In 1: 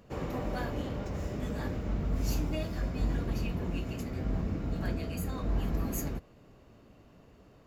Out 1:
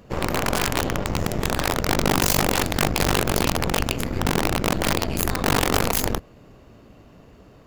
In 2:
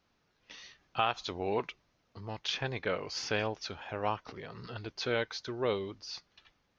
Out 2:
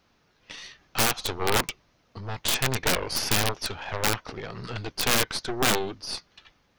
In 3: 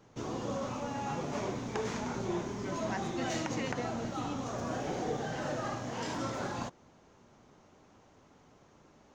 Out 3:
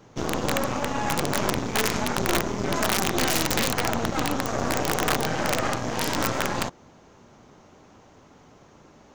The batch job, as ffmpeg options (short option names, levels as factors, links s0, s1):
-af "aeval=exprs='0.2*(cos(1*acos(clip(val(0)/0.2,-1,1)))-cos(1*PI/2))+0.0447*(cos(8*acos(clip(val(0)/0.2,-1,1)))-cos(8*PI/2))':c=same,aeval=exprs='(mod(10.6*val(0)+1,2)-1)/10.6':c=same,volume=2.66"